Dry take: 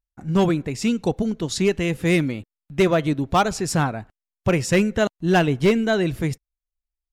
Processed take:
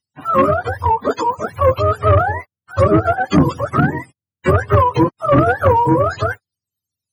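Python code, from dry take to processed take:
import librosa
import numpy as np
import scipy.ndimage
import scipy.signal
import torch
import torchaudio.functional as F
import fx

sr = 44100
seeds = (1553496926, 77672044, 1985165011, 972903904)

y = fx.octave_mirror(x, sr, pivot_hz=460.0)
y = fx.cheby_harmonics(y, sr, harmonics=(5,), levels_db=(-12,), full_scale_db=-3.5)
y = y * librosa.db_to_amplitude(2.0)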